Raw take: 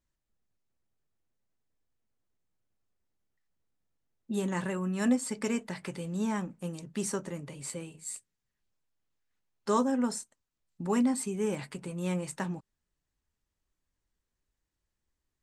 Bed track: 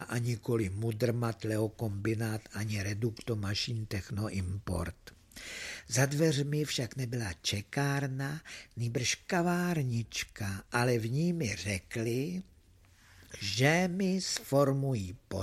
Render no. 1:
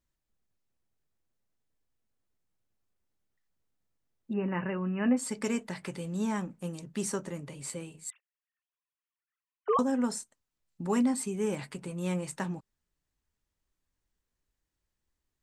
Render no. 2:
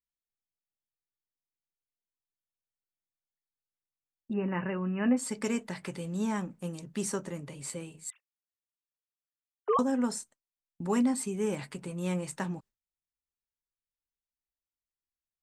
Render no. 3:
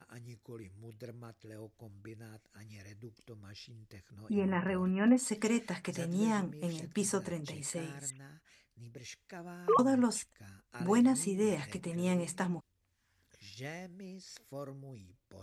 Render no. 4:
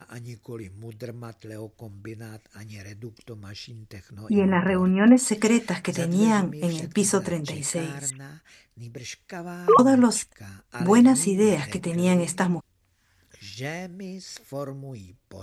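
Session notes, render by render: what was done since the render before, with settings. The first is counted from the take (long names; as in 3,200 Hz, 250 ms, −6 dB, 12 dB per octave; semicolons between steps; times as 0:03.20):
0:04.33–0:05.17: linear-phase brick-wall low-pass 3,000 Hz; 0:08.10–0:09.79: three sine waves on the formant tracks
noise gate with hold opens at −44 dBFS
mix in bed track −17.5 dB
level +11 dB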